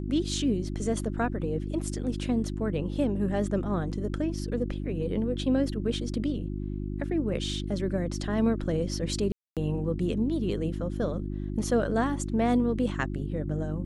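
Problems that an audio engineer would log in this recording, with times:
mains hum 50 Hz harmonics 7 −33 dBFS
0:09.32–0:09.57: drop-out 247 ms

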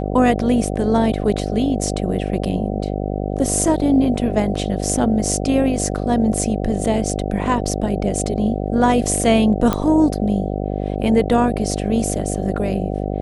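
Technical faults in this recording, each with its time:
mains buzz 50 Hz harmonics 15 −23 dBFS
0:09.73: click −6 dBFS

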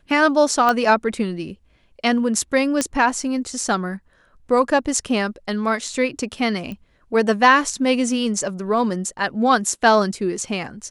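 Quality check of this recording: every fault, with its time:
0:00.69: click −6 dBFS
0:02.81: click −6 dBFS
0:06.72: click −20 dBFS

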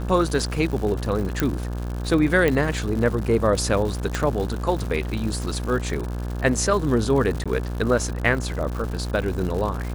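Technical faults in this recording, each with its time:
mains buzz 60 Hz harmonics 29 −28 dBFS
surface crackle 190 per second −29 dBFS
0:01.40: click −6 dBFS
0:02.48: click −9 dBFS
0:04.15: click −10 dBFS
0:07.44–0:07.46: drop-out 16 ms

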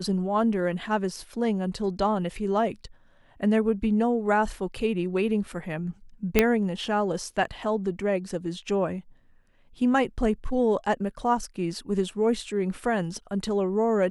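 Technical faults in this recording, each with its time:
0:06.39: click −4 dBFS

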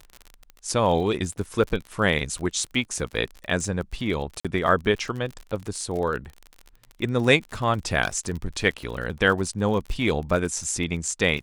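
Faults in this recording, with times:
surface crackle 39 per second −31 dBFS
0:04.40–0:04.45: drop-out 46 ms
0:08.03–0:08.31: clipping −17 dBFS

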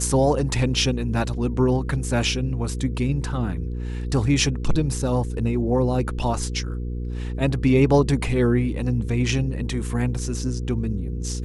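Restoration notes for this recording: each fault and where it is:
mains hum 60 Hz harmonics 8 −28 dBFS

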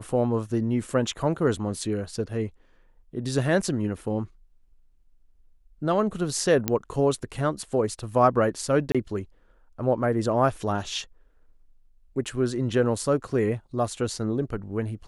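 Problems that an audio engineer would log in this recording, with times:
0:06.68: click −8 dBFS
0:08.92–0:08.95: drop-out 26 ms

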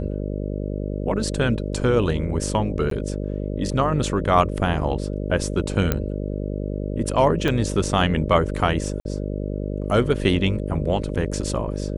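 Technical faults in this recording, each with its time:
mains buzz 50 Hz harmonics 12 −27 dBFS
0:02.90–0:02.91: drop-out 13 ms
0:05.92: click −7 dBFS
0:07.48: drop-out 3.1 ms
0:09.00–0:09.05: drop-out 51 ms

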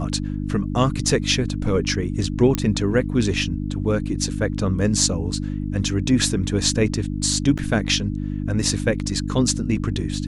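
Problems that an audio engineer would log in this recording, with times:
mains hum 50 Hz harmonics 6 −26 dBFS
0:02.55: click −7 dBFS
0:07.58–0:07.59: drop-out 7.5 ms

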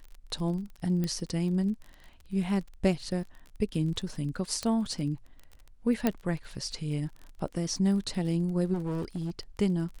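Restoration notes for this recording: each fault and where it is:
surface crackle 29 per second −38 dBFS
0:01.04: click −19 dBFS
0:04.63: click −18 dBFS
0:06.07: click −12 dBFS
0:08.73–0:09.31: clipping −28.5 dBFS

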